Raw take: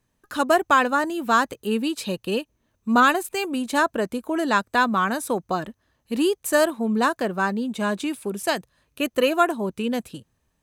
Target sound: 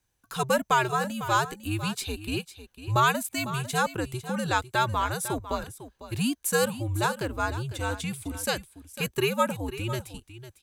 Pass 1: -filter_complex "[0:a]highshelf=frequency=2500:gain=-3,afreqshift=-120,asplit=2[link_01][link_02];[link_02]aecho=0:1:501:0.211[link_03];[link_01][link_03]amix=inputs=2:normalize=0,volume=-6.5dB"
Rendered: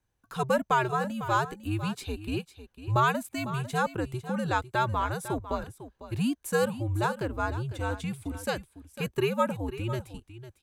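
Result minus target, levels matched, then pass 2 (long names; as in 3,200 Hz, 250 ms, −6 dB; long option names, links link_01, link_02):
4,000 Hz band −5.0 dB
-filter_complex "[0:a]highshelf=frequency=2500:gain=7.5,afreqshift=-120,asplit=2[link_01][link_02];[link_02]aecho=0:1:501:0.211[link_03];[link_01][link_03]amix=inputs=2:normalize=0,volume=-6.5dB"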